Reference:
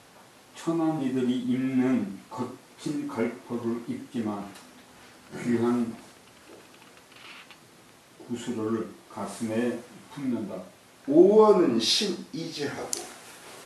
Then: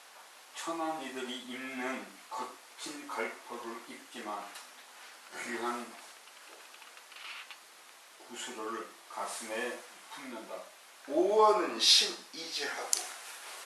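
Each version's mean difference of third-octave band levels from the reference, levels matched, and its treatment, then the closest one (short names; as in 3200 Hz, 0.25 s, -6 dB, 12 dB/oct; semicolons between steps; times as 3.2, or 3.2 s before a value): 9.0 dB: HPF 800 Hz 12 dB/oct; gain +1.5 dB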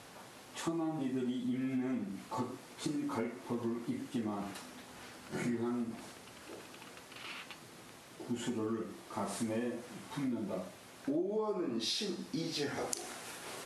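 6.5 dB: compressor 8:1, threshold -33 dBFS, peak gain reduction 21 dB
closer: second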